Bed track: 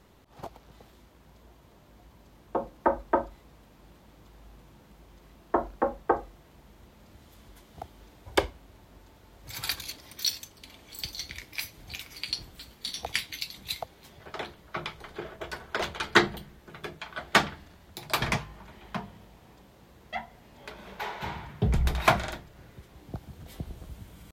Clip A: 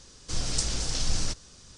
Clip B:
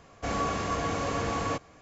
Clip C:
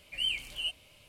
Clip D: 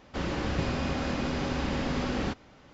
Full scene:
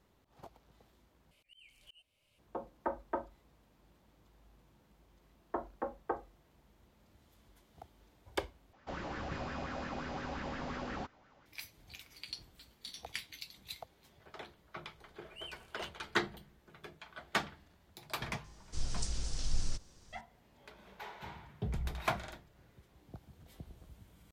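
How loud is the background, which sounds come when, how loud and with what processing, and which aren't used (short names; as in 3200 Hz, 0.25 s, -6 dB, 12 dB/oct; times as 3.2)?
bed track -12 dB
1.31 replace with C -11 dB + auto swell 0.621 s
8.73 replace with D -13 dB + LFO bell 5.7 Hz 660–1700 Hz +12 dB
15.18 add C -17.5 dB
18.44 add A -13 dB + low shelf 110 Hz +9.5 dB
not used: B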